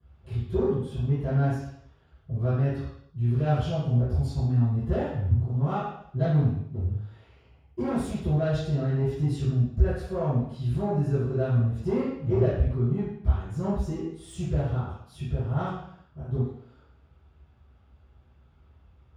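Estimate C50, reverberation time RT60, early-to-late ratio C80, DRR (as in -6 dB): 0.0 dB, 0.65 s, 4.0 dB, -19.0 dB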